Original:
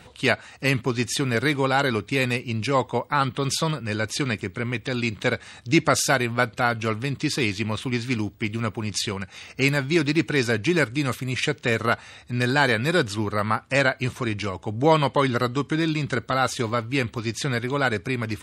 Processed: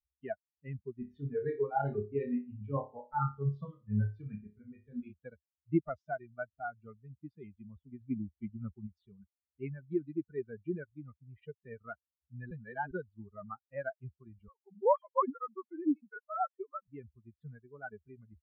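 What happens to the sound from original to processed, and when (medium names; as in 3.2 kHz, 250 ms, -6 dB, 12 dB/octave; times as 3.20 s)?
0.99–5.13 s: flutter echo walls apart 4.9 m, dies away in 0.76 s
8.01–8.87 s: gain +3.5 dB
12.51–12.91 s: reverse
14.48–16.88 s: formants replaced by sine waves
whole clip: expander on every frequency bin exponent 3; low-pass 1.2 kHz 24 dB/octave; trim -5.5 dB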